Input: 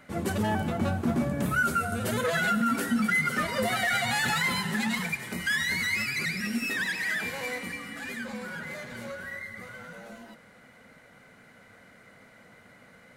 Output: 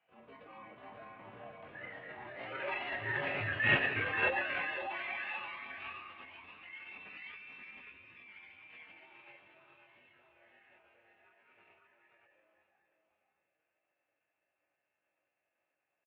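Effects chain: Doppler pass-by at 2.85 s, 16 m/s, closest 5 m; high-pass 230 Hz 6 dB/octave; bass shelf 400 Hz -9.5 dB; band-stop 1.5 kHz, Q 5.4; chorus 0.16 Hz, delay 20 ms, depth 5.5 ms; mistuned SSB -130 Hz 310–2100 Hz; tempo 0.82×; delay 536 ms -4 dB; on a send at -9 dB: reverberation, pre-delay 76 ms; on the sum: formant shift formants +6 st; trim +4 dB

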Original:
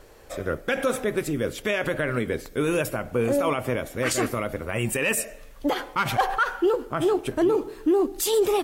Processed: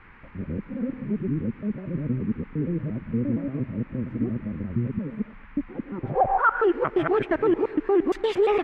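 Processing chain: time reversed locally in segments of 116 ms; low-pass sweep 210 Hz -> 2 kHz, 5.81–6.69 s; band noise 830–2300 Hz -53 dBFS

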